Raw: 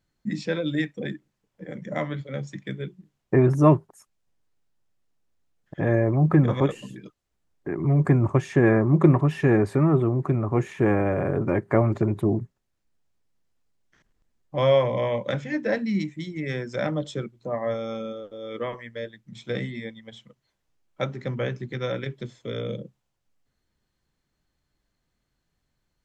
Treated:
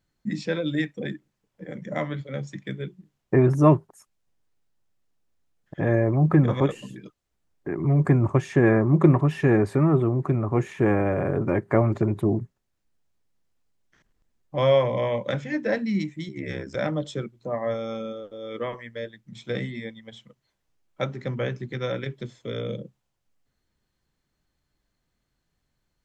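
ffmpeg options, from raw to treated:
-filter_complex "[0:a]asettb=1/sr,asplit=3[a][b][c];[a]atrim=end=16.284[d];[b]atrim=start=16.28:end=16.75,asetpts=PTS-STARTPTS,afade=t=in:d=0.004:c=qsin,afade=t=out:st=0.466:d=0.004:c=qsin,aeval=exprs='val(0)*sin(2*PI*34*n/s)':c=same[e];[c]atrim=start=16.746[f];[d][e]acrossfade=d=0.004:c1=hsin:c2=qsin[g];[g][f]acrossfade=d=0.004:c1=qsin:c2=hsin"

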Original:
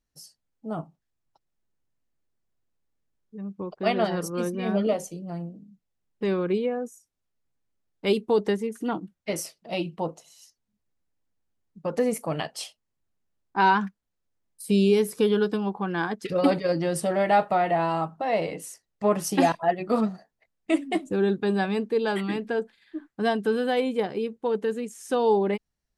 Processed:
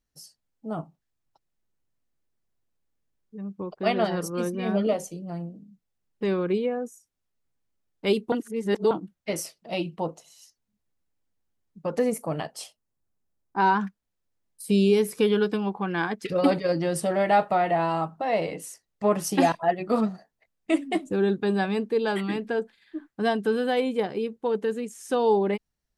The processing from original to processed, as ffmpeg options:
-filter_complex "[0:a]asettb=1/sr,asplit=3[a][b][c];[a]atrim=end=12.104[d];[b]atrim=start=12.1:end=13.8,asetpts=PTS-STARTPTS,afade=t=in:d=0.004:c=qsin,afade=t=out:st=1.696:d=0.004:c=qsin,equalizer=f=3k:w=0.7:g=-6.5[e];[c]atrim=start=13.796[f];[d][e]acrossfade=d=0.004:c1=hsin:c2=qsin[g];[g][f]acrossfade=d=0.004:c1=qsin:c2=hsin,asettb=1/sr,asplit=3[h][i][j];[h]atrim=end=15.044[k];[i]atrim=start=15.04:end=16.26,asetpts=PTS-STARTPTS,afade=t=in:d=0.004:c=qsin,afade=t=out:st=1.216:d=0.004:c=qsin,equalizer=f=2.3k:t=o:w=0.53:g=6[l];[j]atrim=start=16.256[m];[k][l]acrossfade=d=0.004:c1=hsin:c2=qsin[n];[n][m]acrossfade=d=0.004:c1=qsin:c2=hsin,asplit=3[o][p][q];[o]atrim=end=8.322[r];[p]atrim=start=8.318:end=8.912,asetpts=PTS-STARTPTS,areverse[s];[q]atrim=start=8.908[t];[r][s]acrossfade=d=0.004:c1=hsin:c2=hsin[u];[u][t]acrossfade=d=0.004:c1=hsin:c2=hsin"

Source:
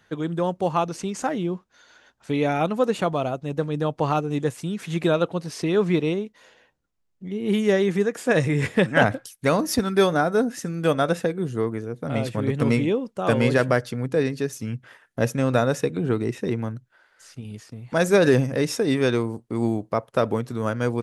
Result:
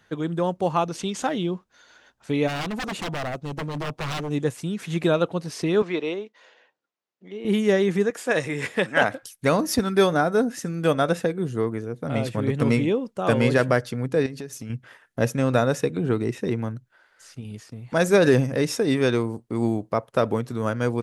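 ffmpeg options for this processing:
-filter_complex "[0:a]asettb=1/sr,asplit=3[a][b][c];[a]atrim=end=0.954[d];[b]atrim=start=0.95:end=1.51,asetpts=PTS-STARTPTS,afade=t=in:d=0.004:c=qsin,afade=t=out:st=0.556:d=0.004:c=qsin,equalizer=f=3.4k:w=2.6:g=10[e];[c]atrim=start=1.506[f];[d][e]acrossfade=d=0.004:c1=hsin:c2=qsin[g];[g][f]acrossfade=d=0.004:c1=qsin:c2=hsin,asplit=3[h][i][j];[h]afade=t=out:st=2.47:d=0.02[k];[i]aeval=exprs='0.0631*(abs(mod(val(0)/0.0631+3,4)-2)-1)':c=same,afade=t=in:st=2.47:d=0.02,afade=t=out:st=4.28:d=0.02[l];[j]afade=t=in:st=4.28:d=0.02[m];[k][l][m]amix=inputs=3:normalize=0,asettb=1/sr,asplit=3[n][o][p];[n]atrim=end=5.824[q];[o]atrim=start=5.82:end=7.45,asetpts=PTS-STARTPTS,afade=t=in:d=0.004:c=qsin,afade=t=out:st=1.626:d=0.004:c=qsin,highpass=400,lowpass=5.1k[r];[p]atrim=start=7.446[s];[q][r]acrossfade=d=0.004:c1=hsin:c2=qsin[t];[t][s]acrossfade=d=0.004:c1=qsin:c2=hsin,asettb=1/sr,asplit=3[u][v][w];[u]atrim=end=8.104[x];[v]atrim=start=8.1:end=9.23,asetpts=PTS-STARTPTS,afade=t=in:d=0.004:c=qsin,afade=t=out:st=1.126:d=0.004:c=qsin,highpass=f=480:p=1[y];[w]atrim=start=9.226[z];[x][y]acrossfade=d=0.004:c1=hsin:c2=qsin[aa];[aa][z]acrossfade=d=0.004:c1=qsin:c2=hsin,asettb=1/sr,asplit=3[ab][ac][ad];[ab]atrim=end=14.264[ae];[ac]atrim=start=14.26:end=14.7,asetpts=PTS-STARTPTS,afade=t=in:d=0.004:c=qsin,afade=t=out:st=0.436:d=0.004:c=qsin,acompressor=threshold=-31dB:ratio=5:attack=3.2:release=140:knee=1:detection=peak[af];[ad]atrim=start=14.696[ag];[ae][af]acrossfade=d=0.004:c1=hsin:c2=qsin[ah];[ah][ag]acrossfade=d=0.004:c1=qsin:c2=hsin"

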